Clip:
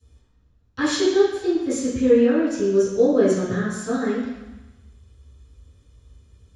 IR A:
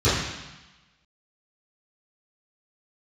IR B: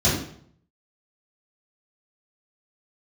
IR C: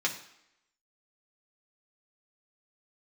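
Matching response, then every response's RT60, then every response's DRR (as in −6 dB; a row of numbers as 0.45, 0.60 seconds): A; 1.0, 0.60, 0.80 seconds; −18.0, −10.5, −1.5 decibels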